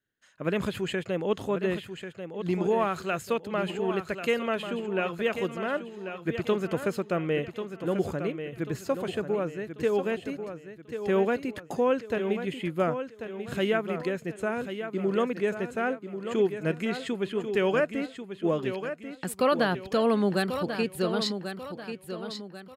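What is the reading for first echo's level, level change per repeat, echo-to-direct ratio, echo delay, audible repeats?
-9.0 dB, -8.0 dB, -8.5 dB, 1.09 s, 4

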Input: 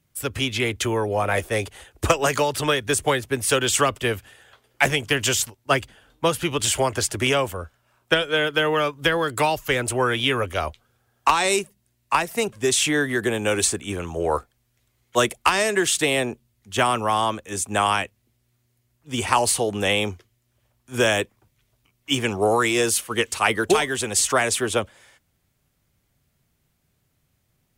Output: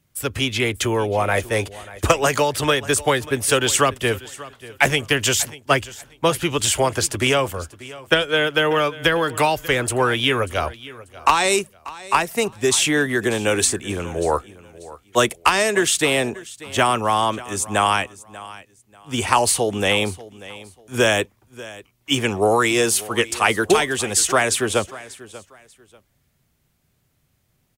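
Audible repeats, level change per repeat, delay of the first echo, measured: 2, -12.0 dB, 0.589 s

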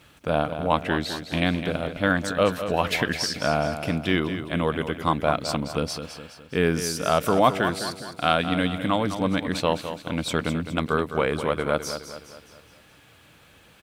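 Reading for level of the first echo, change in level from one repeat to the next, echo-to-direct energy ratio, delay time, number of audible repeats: -10.0 dB, -6.5 dB, -9.0 dB, 0.208 s, 4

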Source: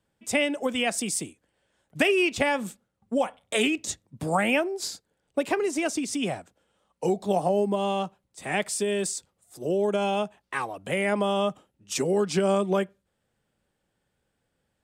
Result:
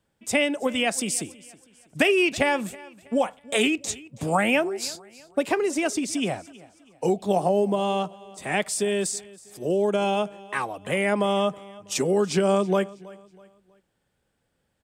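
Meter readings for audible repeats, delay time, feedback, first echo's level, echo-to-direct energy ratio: 2, 0.323 s, 37%, -21.0 dB, -20.5 dB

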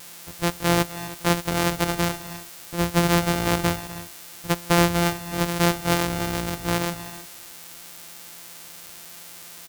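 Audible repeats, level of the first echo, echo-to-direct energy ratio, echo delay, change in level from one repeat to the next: 2, -16.5 dB, -13.0 dB, 0.251 s, no steady repeat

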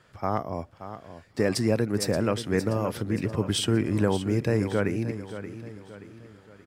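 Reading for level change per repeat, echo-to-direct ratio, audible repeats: -7.5 dB, -11.0 dB, 4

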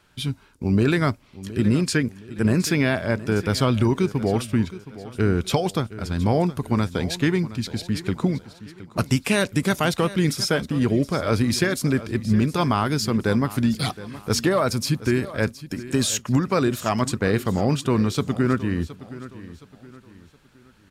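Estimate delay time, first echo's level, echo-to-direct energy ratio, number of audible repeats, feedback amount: 0.718 s, -16.0 dB, -15.5 dB, 3, 37%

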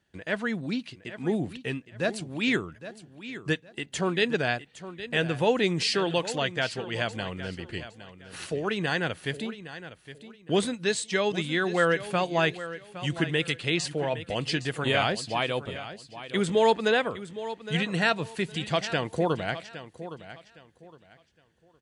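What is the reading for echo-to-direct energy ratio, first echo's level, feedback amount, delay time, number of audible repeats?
-13.0 dB, -13.5 dB, 26%, 0.813 s, 2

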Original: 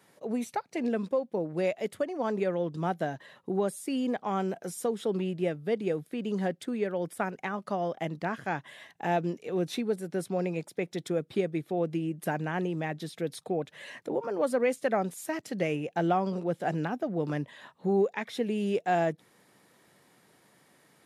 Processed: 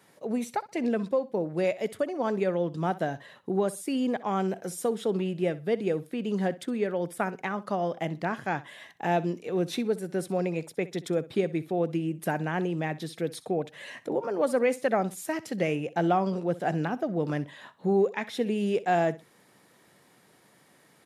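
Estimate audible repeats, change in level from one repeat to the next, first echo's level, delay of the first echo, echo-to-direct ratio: 2, -13.5 dB, -18.0 dB, 63 ms, -18.0 dB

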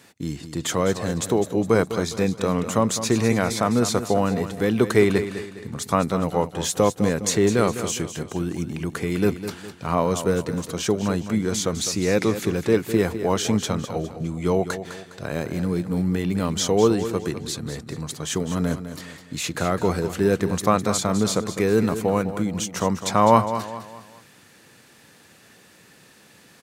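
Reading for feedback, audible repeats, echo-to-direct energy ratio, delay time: 40%, 4, -10.0 dB, 0.205 s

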